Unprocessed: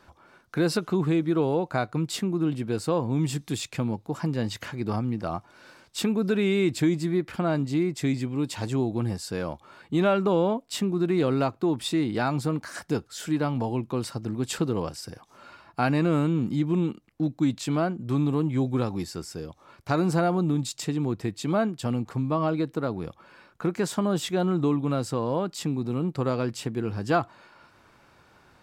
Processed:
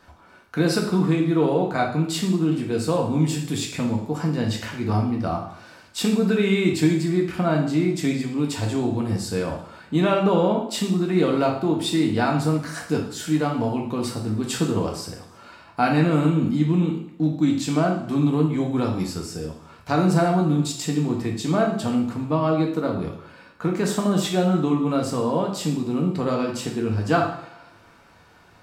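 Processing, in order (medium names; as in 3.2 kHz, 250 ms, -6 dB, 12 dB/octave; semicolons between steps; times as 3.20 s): two-slope reverb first 0.6 s, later 1.5 s, DRR 0 dB; trim +1.5 dB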